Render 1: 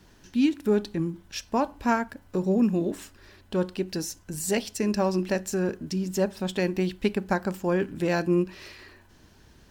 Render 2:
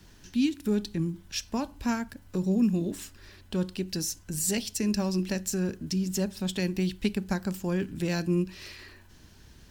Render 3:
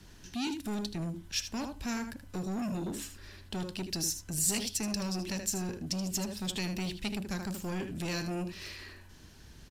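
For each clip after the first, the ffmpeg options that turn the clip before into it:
ffmpeg -i in.wav -filter_complex "[0:a]equalizer=frequency=640:width=0.39:gain=-6.5,acrossover=split=280|3000[link_01][link_02][link_03];[link_02]acompressor=threshold=-48dB:ratio=1.5[link_04];[link_01][link_04][link_03]amix=inputs=3:normalize=0,volume=3.5dB" out.wav
ffmpeg -i in.wav -filter_complex "[0:a]aresample=32000,aresample=44100,aecho=1:1:78:0.299,acrossover=split=2200[link_01][link_02];[link_01]asoftclip=type=tanh:threshold=-32.5dB[link_03];[link_03][link_02]amix=inputs=2:normalize=0" out.wav

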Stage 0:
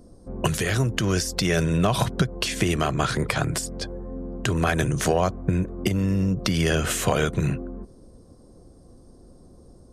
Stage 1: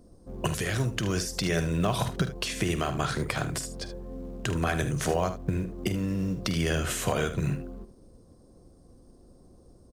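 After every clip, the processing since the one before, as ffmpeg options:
ffmpeg -i in.wav -filter_complex "[0:a]asplit=2[link_01][link_02];[link_02]acrusher=bits=5:mode=log:mix=0:aa=0.000001,volume=-8dB[link_03];[link_01][link_03]amix=inputs=2:normalize=0,aecho=1:1:48|76:0.211|0.251,volume=-8.5dB" out.wav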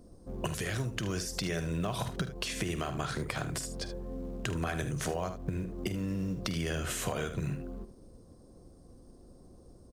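ffmpeg -i in.wav -af "acompressor=threshold=-33dB:ratio=2.5" out.wav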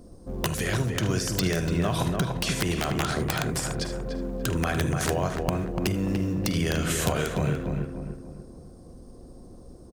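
ffmpeg -i in.wav -filter_complex "[0:a]aeval=exprs='(mod(12.6*val(0)+1,2)-1)/12.6':channel_layout=same,asplit=2[link_01][link_02];[link_02]adelay=292,lowpass=frequency=1700:poles=1,volume=-3.5dB,asplit=2[link_03][link_04];[link_04]adelay=292,lowpass=frequency=1700:poles=1,volume=0.42,asplit=2[link_05][link_06];[link_06]adelay=292,lowpass=frequency=1700:poles=1,volume=0.42,asplit=2[link_07][link_08];[link_08]adelay=292,lowpass=frequency=1700:poles=1,volume=0.42,asplit=2[link_09][link_10];[link_10]adelay=292,lowpass=frequency=1700:poles=1,volume=0.42[link_11];[link_01][link_03][link_05][link_07][link_09][link_11]amix=inputs=6:normalize=0,volume=6.5dB" out.wav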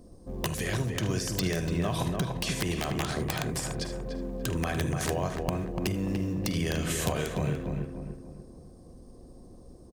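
ffmpeg -i in.wav -af "bandreject=frequency=1400:width=7.9,volume=-3.5dB" out.wav

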